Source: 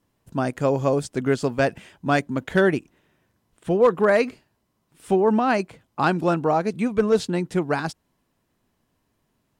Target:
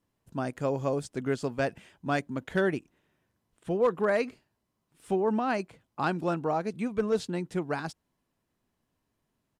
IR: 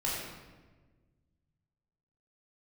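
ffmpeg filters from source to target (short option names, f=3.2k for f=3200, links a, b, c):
-af "aresample=32000,aresample=44100,volume=-8dB"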